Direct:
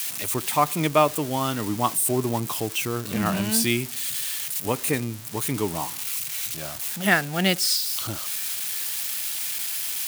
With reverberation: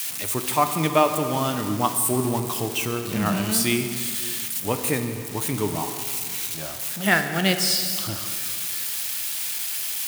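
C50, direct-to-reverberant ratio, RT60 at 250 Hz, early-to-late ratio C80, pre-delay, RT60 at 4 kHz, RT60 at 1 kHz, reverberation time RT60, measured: 7.5 dB, 6.5 dB, 2.5 s, 8.5 dB, 15 ms, 1.9 s, 2.4 s, 2.4 s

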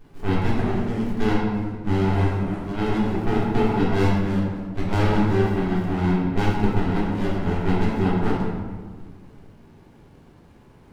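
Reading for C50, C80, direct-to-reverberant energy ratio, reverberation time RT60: 0.0 dB, 2.0 dB, -7.0 dB, 1.6 s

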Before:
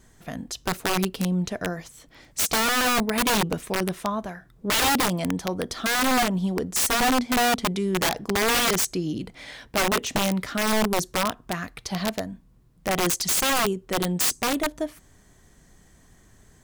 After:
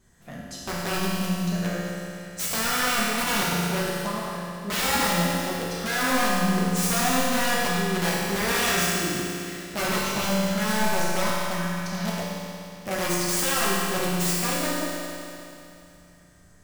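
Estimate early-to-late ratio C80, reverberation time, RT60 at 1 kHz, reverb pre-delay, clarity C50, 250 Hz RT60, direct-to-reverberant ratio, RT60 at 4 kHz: -1.5 dB, 2.8 s, 2.8 s, 6 ms, -3.0 dB, 2.8 s, -8.0 dB, 2.8 s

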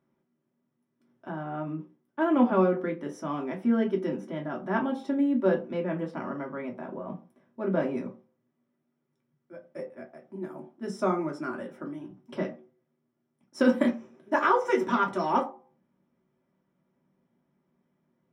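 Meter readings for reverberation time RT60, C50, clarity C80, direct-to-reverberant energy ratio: not exponential, 11.5 dB, 16.5 dB, -2.0 dB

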